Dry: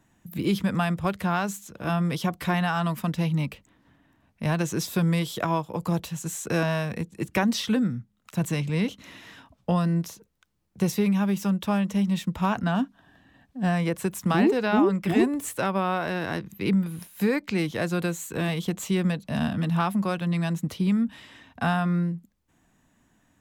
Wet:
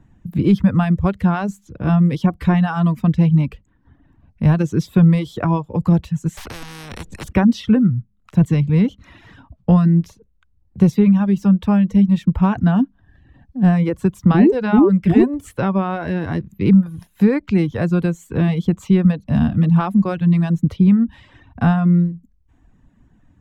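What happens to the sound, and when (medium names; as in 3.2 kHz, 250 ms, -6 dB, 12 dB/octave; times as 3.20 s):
6.37–7.33 s: spectrum-flattening compressor 10:1
whole clip: RIAA curve playback; band-stop 640 Hz, Q 19; reverb removal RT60 0.74 s; trim +3.5 dB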